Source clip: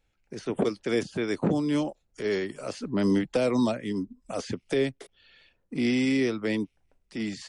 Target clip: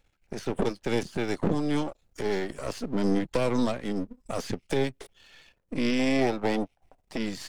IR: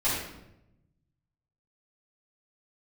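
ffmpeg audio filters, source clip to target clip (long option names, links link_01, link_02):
-filter_complex "[0:a]aeval=exprs='if(lt(val(0),0),0.251*val(0),val(0))':channel_layout=same,asettb=1/sr,asplit=3[link_01][link_02][link_03];[link_01]atrim=end=5.994[link_04];[link_02]atrim=start=5.99:end=7.18,asetpts=PTS-STARTPTS,afade=type=in:duration=0.004:curve=qsin,afade=type=out:start_time=1.186:duration=0.004:curve=qsin,equalizer=frequency=740:width=1.8:gain=12[link_05];[link_03]atrim=start=7.176[link_06];[link_04][link_05]acrossfade=duration=0.004:curve1=hsin:curve2=qsin[link_07];[link_07][link_06]acrossfade=duration=0.004:curve1=qsin:curve2=hsin,asplit=2[link_08][link_09];[link_09]acompressor=threshold=-38dB:ratio=6,volume=2dB[link_10];[link_08][link_10]amix=inputs=2:normalize=0"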